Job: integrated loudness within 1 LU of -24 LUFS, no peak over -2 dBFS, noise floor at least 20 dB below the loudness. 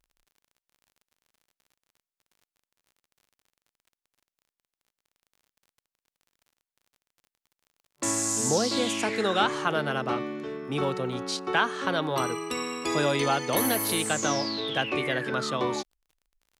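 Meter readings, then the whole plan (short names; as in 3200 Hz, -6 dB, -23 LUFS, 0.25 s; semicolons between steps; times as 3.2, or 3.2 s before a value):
ticks 39/s; loudness -27.0 LUFS; peak -11.0 dBFS; loudness target -24.0 LUFS
-> de-click; gain +3 dB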